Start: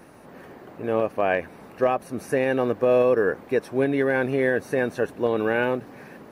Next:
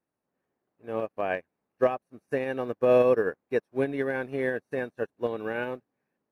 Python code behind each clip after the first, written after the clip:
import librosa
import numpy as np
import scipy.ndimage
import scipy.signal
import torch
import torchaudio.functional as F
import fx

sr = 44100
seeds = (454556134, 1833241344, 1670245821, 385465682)

y = fx.upward_expand(x, sr, threshold_db=-42.0, expansion=2.5)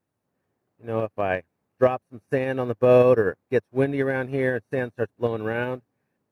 y = fx.peak_eq(x, sr, hz=100.0, db=11.0, octaves=1.1)
y = F.gain(torch.from_numpy(y), 4.0).numpy()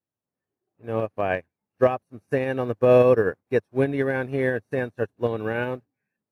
y = fx.noise_reduce_blind(x, sr, reduce_db=13)